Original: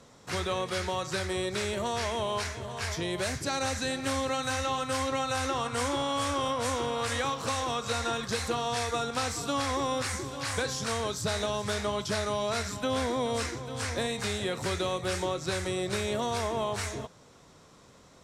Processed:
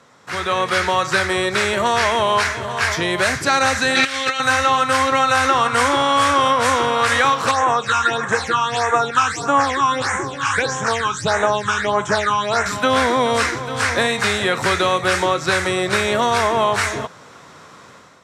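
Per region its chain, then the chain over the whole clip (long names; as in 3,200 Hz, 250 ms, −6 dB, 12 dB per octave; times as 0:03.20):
0:03.95–0:04.40: meter weighting curve D + compressor whose output falls as the input rises −32 dBFS, ratio −0.5 + Butterworth band-reject 1,000 Hz, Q 7.8
0:07.51–0:12.66: all-pass phaser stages 8, 1.6 Hz, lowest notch 550–4,600 Hz + loudspeaker in its box 100–8,700 Hz, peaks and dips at 230 Hz −5 dB, 860 Hz +5 dB, 1,700 Hz +4 dB, 4,600 Hz −3 dB
whole clip: high-pass filter 94 Hz; parametric band 1,500 Hz +10 dB 1.8 octaves; automatic gain control gain up to 9.5 dB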